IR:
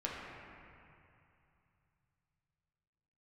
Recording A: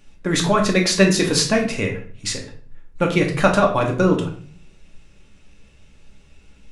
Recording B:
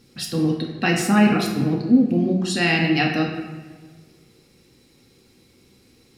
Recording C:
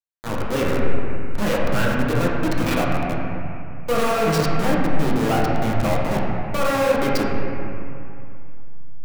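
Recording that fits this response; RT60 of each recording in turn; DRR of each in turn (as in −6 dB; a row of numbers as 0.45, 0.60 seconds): C; 0.50, 1.5, 2.7 seconds; 0.5, −0.5, −5.0 decibels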